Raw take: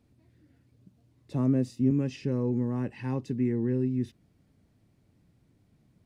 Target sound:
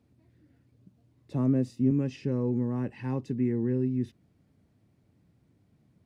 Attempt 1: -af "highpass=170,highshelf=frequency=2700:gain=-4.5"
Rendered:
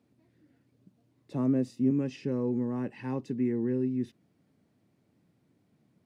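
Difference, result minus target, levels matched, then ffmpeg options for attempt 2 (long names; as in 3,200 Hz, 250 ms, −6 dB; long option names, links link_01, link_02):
125 Hz band −4.5 dB
-af "highpass=60,highshelf=frequency=2700:gain=-4.5"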